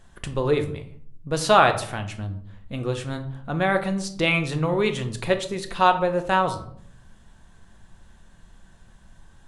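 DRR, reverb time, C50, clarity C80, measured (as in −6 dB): 6.5 dB, 0.60 s, 12.0 dB, 15.5 dB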